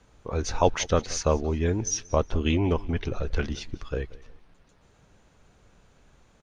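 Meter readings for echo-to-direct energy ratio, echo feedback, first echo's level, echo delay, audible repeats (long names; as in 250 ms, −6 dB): −20.5 dB, 31%, −21.0 dB, 181 ms, 2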